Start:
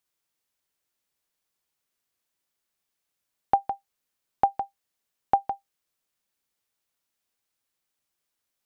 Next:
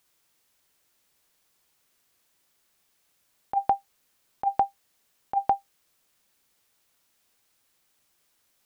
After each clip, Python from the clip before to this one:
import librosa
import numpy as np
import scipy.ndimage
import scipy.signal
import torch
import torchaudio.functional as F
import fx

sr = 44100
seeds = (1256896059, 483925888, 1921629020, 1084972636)

y = fx.over_compress(x, sr, threshold_db=-29.0, ratio=-1.0)
y = F.gain(torch.from_numpy(y), 6.0).numpy()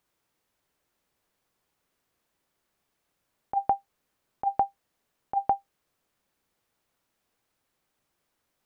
y = fx.high_shelf(x, sr, hz=2100.0, db=-11.5)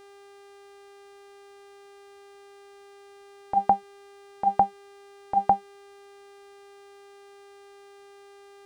y = fx.octave_divider(x, sr, octaves=2, level_db=-2.0)
y = fx.dmg_buzz(y, sr, base_hz=400.0, harmonics=27, level_db=-55.0, tilt_db=-7, odd_only=False)
y = F.gain(torch.from_numpy(y), 4.5).numpy()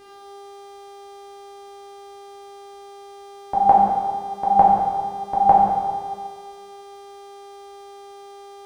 y = fx.rev_plate(x, sr, seeds[0], rt60_s=1.7, hf_ratio=0.8, predelay_ms=0, drr_db=-5.5)
y = F.gain(torch.from_numpy(y), 2.5).numpy()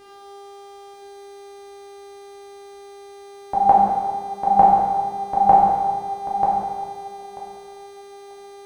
y = fx.echo_feedback(x, sr, ms=938, feedback_pct=15, wet_db=-6.0)